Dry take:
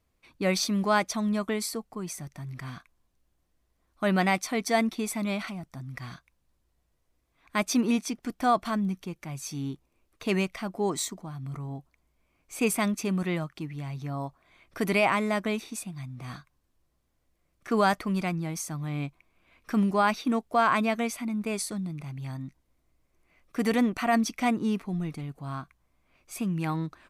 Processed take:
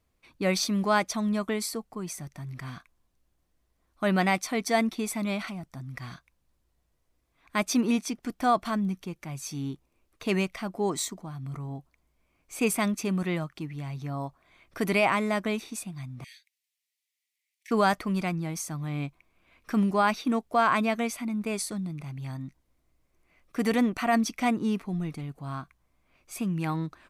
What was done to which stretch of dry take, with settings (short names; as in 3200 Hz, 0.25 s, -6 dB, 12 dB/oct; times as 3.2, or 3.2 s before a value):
16.24–17.71 steep high-pass 1900 Hz 72 dB/oct